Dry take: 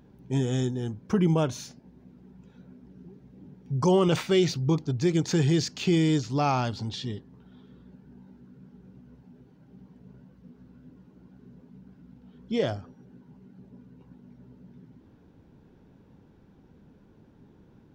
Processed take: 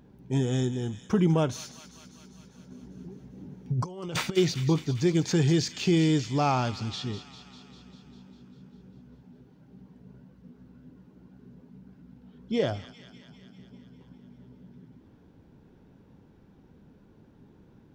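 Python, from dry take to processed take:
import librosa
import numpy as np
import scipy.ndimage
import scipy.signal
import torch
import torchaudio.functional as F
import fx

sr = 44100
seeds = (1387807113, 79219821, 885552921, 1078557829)

p1 = fx.over_compress(x, sr, threshold_db=-28.0, ratio=-0.5, at=(2.7, 4.36), fade=0.02)
y = p1 + fx.echo_wet_highpass(p1, sr, ms=199, feedback_pct=68, hz=1600.0, wet_db=-11.0, dry=0)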